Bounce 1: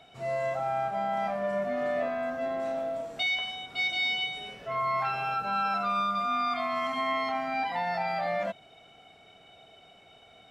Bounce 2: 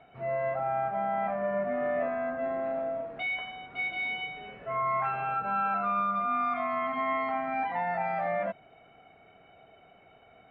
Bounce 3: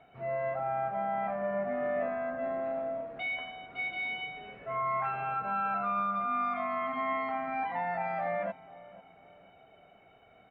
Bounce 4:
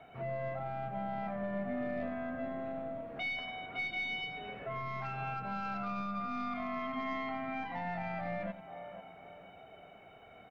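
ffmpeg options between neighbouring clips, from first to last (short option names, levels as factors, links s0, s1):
-af "lowpass=f=2300:w=0.5412,lowpass=f=2300:w=1.3066"
-filter_complex "[0:a]asplit=2[s0][s1];[s1]adelay=491,lowpass=f=980:p=1,volume=0.141,asplit=2[s2][s3];[s3]adelay=491,lowpass=f=980:p=1,volume=0.51,asplit=2[s4][s5];[s5]adelay=491,lowpass=f=980:p=1,volume=0.51,asplit=2[s6][s7];[s7]adelay=491,lowpass=f=980:p=1,volume=0.51[s8];[s0][s2][s4][s6][s8]amix=inputs=5:normalize=0,volume=0.75"
-filter_complex "[0:a]aeval=exprs='0.0794*(cos(1*acos(clip(val(0)/0.0794,-1,1)))-cos(1*PI/2))+0.00251*(cos(4*acos(clip(val(0)/0.0794,-1,1)))-cos(4*PI/2))':c=same,acrossover=split=310|3000[s0][s1][s2];[s1]acompressor=threshold=0.00631:ratio=6[s3];[s0][s3][s2]amix=inputs=3:normalize=0,aecho=1:1:92:0.211,volume=1.58"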